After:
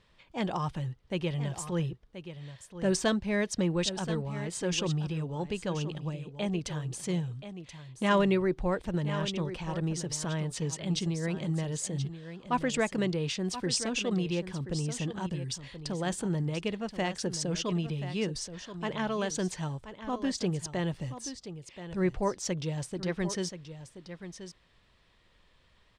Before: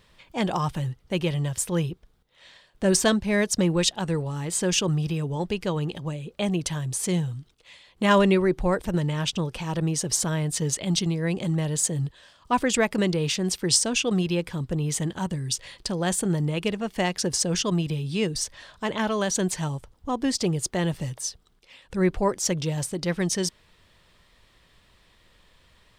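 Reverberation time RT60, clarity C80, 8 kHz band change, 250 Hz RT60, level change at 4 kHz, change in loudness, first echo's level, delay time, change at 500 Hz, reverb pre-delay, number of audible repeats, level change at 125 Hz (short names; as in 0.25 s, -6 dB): none, none, -10.5 dB, none, -7.5 dB, -6.5 dB, -11.5 dB, 1.029 s, -6.0 dB, none, 1, -5.5 dB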